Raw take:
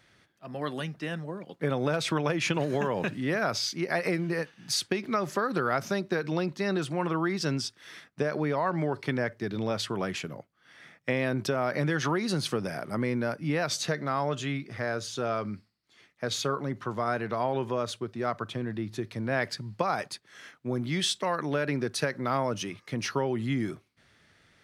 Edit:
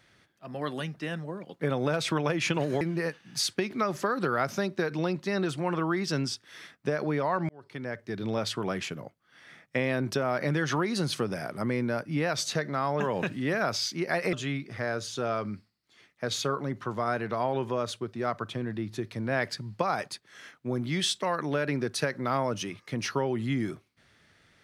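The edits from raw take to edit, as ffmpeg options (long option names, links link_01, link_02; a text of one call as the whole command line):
ffmpeg -i in.wav -filter_complex "[0:a]asplit=5[link_01][link_02][link_03][link_04][link_05];[link_01]atrim=end=2.812[link_06];[link_02]atrim=start=4.138:end=8.82,asetpts=PTS-STARTPTS,afade=type=out:start_time=4.678:duration=0.004:curve=hsin[link_07];[link_03]atrim=start=8.82:end=14.332,asetpts=PTS-STARTPTS,afade=type=in:duration=0.81[link_08];[link_04]atrim=start=2.808:end=4.142[link_09];[link_05]atrim=start=14.328[link_10];[link_07][link_08]concat=n=2:v=0:a=1[link_11];[link_06][link_11]acrossfade=duration=0.004:curve1=hsin:curve2=hsin[link_12];[link_12][link_09]acrossfade=duration=0.004:curve1=hsin:curve2=hsin[link_13];[link_13][link_10]acrossfade=duration=0.004:curve1=hsin:curve2=hsin" out.wav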